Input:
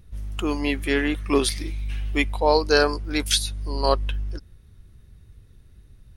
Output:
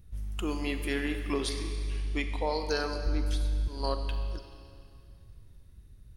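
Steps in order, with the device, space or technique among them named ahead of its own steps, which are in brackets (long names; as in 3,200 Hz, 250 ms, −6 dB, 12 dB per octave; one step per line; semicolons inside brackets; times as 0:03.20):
0:01.32–0:02.41: low-pass filter 7,000 Hz 12 dB per octave
0:03.06–0:03.68: spectral tilt −3.5 dB per octave
ASMR close-microphone chain (low-shelf EQ 200 Hz +4.5 dB; downward compressor, threshold −18 dBFS, peak gain reduction 10 dB; high-shelf EQ 7,100 Hz +6 dB)
four-comb reverb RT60 2.4 s, combs from 29 ms, DRR 6.5 dB
level −8 dB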